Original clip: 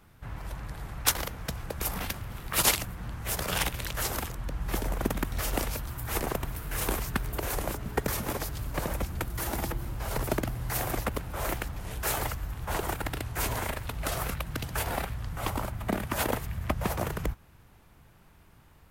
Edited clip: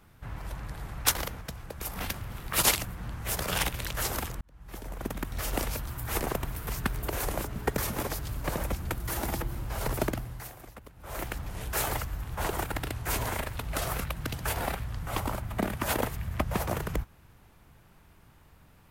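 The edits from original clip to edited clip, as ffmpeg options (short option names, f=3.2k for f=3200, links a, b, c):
-filter_complex "[0:a]asplit=7[a][b][c][d][e][f][g];[a]atrim=end=1.412[h];[b]atrim=start=1.408:end=1.982,asetpts=PTS-STARTPTS,volume=-5dB[i];[c]atrim=start=1.978:end=4.41,asetpts=PTS-STARTPTS,afade=t=out:st=2.428:d=0.004:c=hsin[j];[d]atrim=start=4.41:end=6.672,asetpts=PTS-STARTPTS,afade=t=in:d=1.29[k];[e]atrim=start=6.968:end=10.82,asetpts=PTS-STARTPTS,afade=t=out:st=3.392:d=0.46:silence=0.141254[l];[f]atrim=start=10.82:end=11.25,asetpts=PTS-STARTPTS,volume=-17dB[m];[g]atrim=start=11.25,asetpts=PTS-STARTPTS,afade=t=in:d=0.46:silence=0.141254[n];[h][i]acrossfade=d=0.004:c1=hsin:c2=hsin[o];[j][k]concat=n=2:v=0:a=1[p];[o][p]acrossfade=d=0.004:c1=hsin:c2=hsin[q];[l][m][n]concat=n=3:v=0:a=1[r];[q][r]acrossfade=d=0.004:c1=hsin:c2=hsin"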